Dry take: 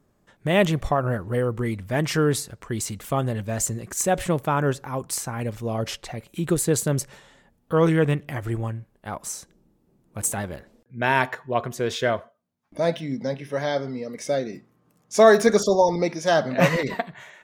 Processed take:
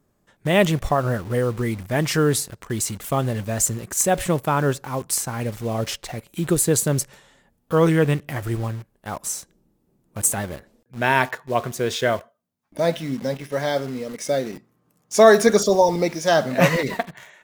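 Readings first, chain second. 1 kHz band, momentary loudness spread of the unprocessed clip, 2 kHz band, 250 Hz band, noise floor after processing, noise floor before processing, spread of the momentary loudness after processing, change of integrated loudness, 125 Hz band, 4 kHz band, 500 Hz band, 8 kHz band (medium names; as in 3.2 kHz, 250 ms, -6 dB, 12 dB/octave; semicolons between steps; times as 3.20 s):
+2.0 dB, 14 LU, +2.0 dB, +2.0 dB, -67 dBFS, -65 dBFS, 13 LU, +2.0 dB, +2.0 dB, +3.0 dB, +2.0 dB, +5.0 dB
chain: treble shelf 7.4 kHz +6 dB; in parallel at -5 dB: bit crusher 6-bit; on the sum: trim -2 dB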